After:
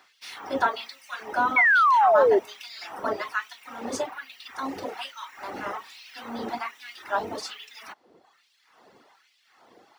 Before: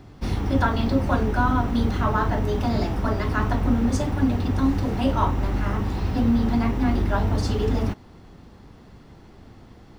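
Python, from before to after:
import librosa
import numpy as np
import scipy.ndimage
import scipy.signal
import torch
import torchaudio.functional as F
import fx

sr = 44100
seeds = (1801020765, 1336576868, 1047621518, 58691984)

y = fx.filter_lfo_highpass(x, sr, shape='sine', hz=1.2, low_hz=450.0, high_hz=2600.0, q=1.1)
y = fx.dereverb_blind(y, sr, rt60_s=1.1)
y = fx.spec_paint(y, sr, seeds[0], shape='fall', start_s=1.56, length_s=0.83, low_hz=370.0, high_hz=2300.0, level_db=-18.0)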